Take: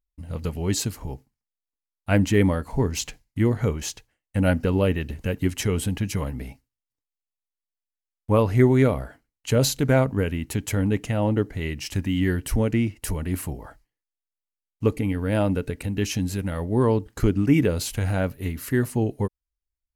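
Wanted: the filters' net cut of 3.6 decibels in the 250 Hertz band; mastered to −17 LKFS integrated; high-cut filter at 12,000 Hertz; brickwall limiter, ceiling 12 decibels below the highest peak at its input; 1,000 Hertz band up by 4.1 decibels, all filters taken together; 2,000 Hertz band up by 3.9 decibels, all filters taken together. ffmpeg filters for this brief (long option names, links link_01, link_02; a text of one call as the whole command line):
ffmpeg -i in.wav -af "lowpass=12000,equalizer=frequency=250:width_type=o:gain=-5,equalizer=frequency=1000:width_type=o:gain=4.5,equalizer=frequency=2000:width_type=o:gain=3.5,volume=11.5dB,alimiter=limit=-6dB:level=0:latency=1" out.wav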